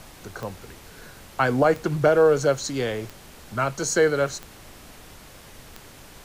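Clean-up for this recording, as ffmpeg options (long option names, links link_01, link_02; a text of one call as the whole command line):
ffmpeg -i in.wav -af "adeclick=threshold=4,afftdn=noise_reduction=20:noise_floor=-46" out.wav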